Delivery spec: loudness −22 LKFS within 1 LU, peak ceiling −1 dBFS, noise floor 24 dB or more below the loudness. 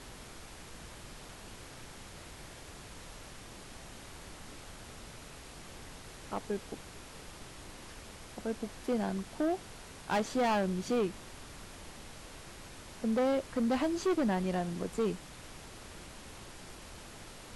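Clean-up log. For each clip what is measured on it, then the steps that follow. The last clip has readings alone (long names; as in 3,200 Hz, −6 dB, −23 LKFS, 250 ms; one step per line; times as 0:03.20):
share of clipped samples 1.4%; peaks flattened at −25.5 dBFS; background noise floor −50 dBFS; target noise floor −58 dBFS; integrated loudness −33.5 LKFS; sample peak −25.5 dBFS; target loudness −22.0 LKFS
→ clipped peaks rebuilt −25.5 dBFS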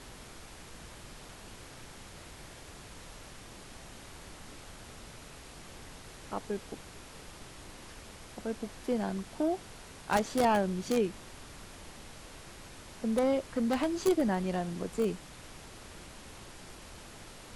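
share of clipped samples 0.0%; background noise floor −50 dBFS; target noise floor −56 dBFS
→ noise reduction from a noise print 6 dB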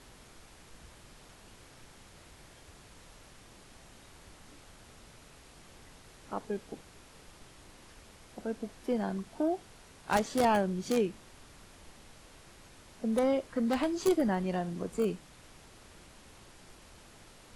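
background noise floor −56 dBFS; integrated loudness −32.0 LKFS; sample peak −16.5 dBFS; target loudness −22.0 LKFS
→ level +10 dB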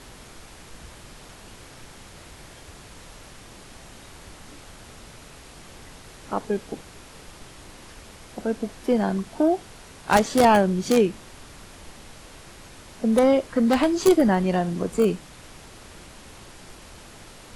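integrated loudness −22.0 LKFS; sample peak −6.5 dBFS; background noise floor −46 dBFS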